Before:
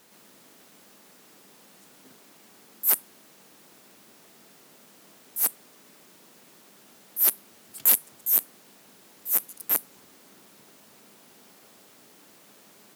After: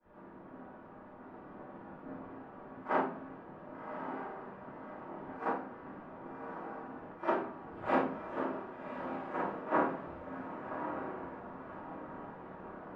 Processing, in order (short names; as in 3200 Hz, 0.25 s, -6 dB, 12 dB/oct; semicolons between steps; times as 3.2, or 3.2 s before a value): short-time reversal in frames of 0.112 s; low shelf 88 Hz +7 dB; on a send: diffused feedback echo 1.135 s, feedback 47%, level -4.5 dB; on the sum: shoebox room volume 61 m³, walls mixed, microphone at 2.5 m; in parallel at +2 dB: compressor, threshold -31 dBFS, peak gain reduction 20 dB; on the sum: ladder low-pass 1500 Hz, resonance 25%; three-band expander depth 70%; gain +1.5 dB